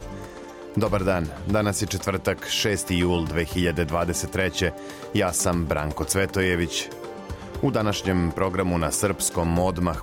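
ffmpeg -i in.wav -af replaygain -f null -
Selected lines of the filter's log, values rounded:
track_gain = +6.0 dB
track_peak = 0.226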